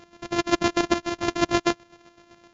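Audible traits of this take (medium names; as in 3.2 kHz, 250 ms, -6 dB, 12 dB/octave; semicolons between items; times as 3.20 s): a buzz of ramps at a fixed pitch in blocks of 128 samples; chopped level 7.8 Hz, depth 60%, duty 30%; WMA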